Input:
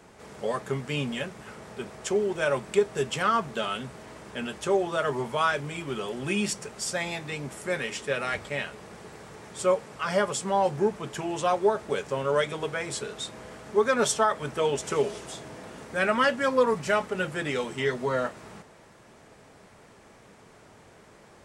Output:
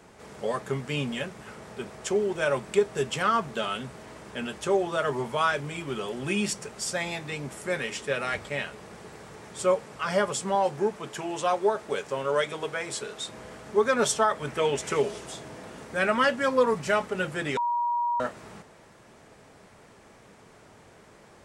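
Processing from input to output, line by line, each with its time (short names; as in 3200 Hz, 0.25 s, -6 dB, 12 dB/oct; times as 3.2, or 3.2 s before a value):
10.55–13.29 low shelf 180 Hz -9 dB
14.47–15 bell 2100 Hz +5.5 dB
17.57–18.2 bleep 955 Hz -23.5 dBFS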